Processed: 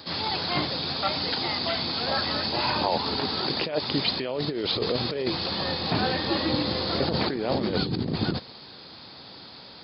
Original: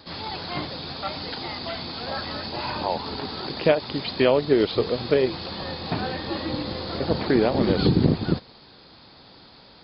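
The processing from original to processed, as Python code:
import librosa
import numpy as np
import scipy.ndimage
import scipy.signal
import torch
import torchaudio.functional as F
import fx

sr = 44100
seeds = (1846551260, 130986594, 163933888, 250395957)

y = scipy.signal.sosfilt(scipy.signal.butter(2, 78.0, 'highpass', fs=sr, output='sos'), x)
y = fx.high_shelf(y, sr, hz=3600.0, db=6.0)
y = fx.over_compress(y, sr, threshold_db=-25.0, ratio=-1.0)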